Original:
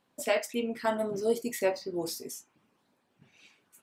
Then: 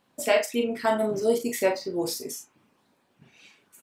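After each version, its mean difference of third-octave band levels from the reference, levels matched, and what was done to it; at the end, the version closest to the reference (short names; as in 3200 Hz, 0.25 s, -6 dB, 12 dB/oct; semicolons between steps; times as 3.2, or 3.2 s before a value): 1.5 dB: doubler 38 ms -7 dB; gain +4.5 dB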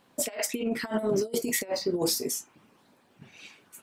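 7.0 dB: negative-ratio compressor -34 dBFS, ratio -0.5; gain +6 dB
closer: first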